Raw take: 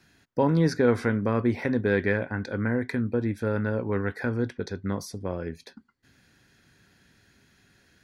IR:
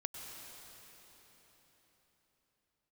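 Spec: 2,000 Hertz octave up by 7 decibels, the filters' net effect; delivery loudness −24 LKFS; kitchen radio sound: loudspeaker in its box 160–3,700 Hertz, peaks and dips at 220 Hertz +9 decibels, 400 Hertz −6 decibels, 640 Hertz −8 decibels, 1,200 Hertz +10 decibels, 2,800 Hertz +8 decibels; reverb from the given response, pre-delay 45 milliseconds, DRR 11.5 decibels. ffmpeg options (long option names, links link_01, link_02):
-filter_complex "[0:a]equalizer=frequency=2000:width_type=o:gain=6.5,asplit=2[link_01][link_02];[1:a]atrim=start_sample=2205,adelay=45[link_03];[link_02][link_03]afir=irnorm=-1:irlink=0,volume=-11dB[link_04];[link_01][link_04]amix=inputs=2:normalize=0,highpass=160,equalizer=frequency=220:width_type=q:width=4:gain=9,equalizer=frequency=400:width_type=q:width=4:gain=-6,equalizer=frequency=640:width_type=q:width=4:gain=-8,equalizer=frequency=1200:width_type=q:width=4:gain=10,equalizer=frequency=2800:width_type=q:width=4:gain=8,lowpass=frequency=3700:width=0.5412,lowpass=frequency=3700:width=1.3066,volume=0.5dB"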